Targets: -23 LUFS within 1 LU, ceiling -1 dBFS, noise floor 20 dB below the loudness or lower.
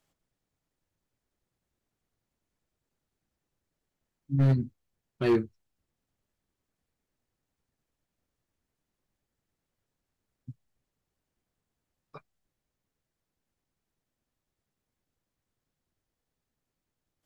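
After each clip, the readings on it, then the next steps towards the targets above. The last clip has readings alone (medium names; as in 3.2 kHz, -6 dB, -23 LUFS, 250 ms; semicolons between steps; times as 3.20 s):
clipped samples 0.3%; clipping level -18.5 dBFS; loudness -27.5 LUFS; peak level -18.5 dBFS; loudness target -23.0 LUFS
-> clip repair -18.5 dBFS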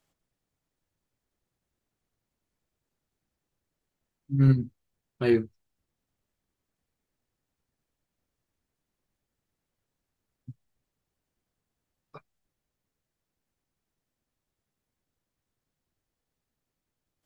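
clipped samples 0.0%; loudness -25.5 LUFS; peak level -10.0 dBFS; loudness target -23.0 LUFS
-> trim +2.5 dB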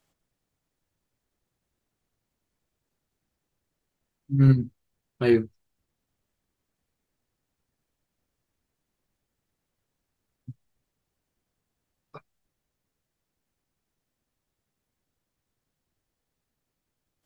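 loudness -23.0 LUFS; peak level -7.5 dBFS; noise floor -83 dBFS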